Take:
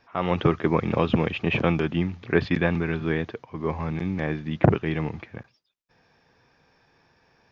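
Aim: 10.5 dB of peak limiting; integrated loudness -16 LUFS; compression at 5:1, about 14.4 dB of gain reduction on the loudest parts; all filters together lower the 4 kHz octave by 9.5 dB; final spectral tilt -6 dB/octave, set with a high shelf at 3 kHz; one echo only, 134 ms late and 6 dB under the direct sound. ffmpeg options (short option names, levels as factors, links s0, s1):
-af "highshelf=f=3000:g=-6.5,equalizer=f=4000:t=o:g=-9,acompressor=threshold=0.0398:ratio=5,alimiter=limit=0.0794:level=0:latency=1,aecho=1:1:134:0.501,volume=7.94"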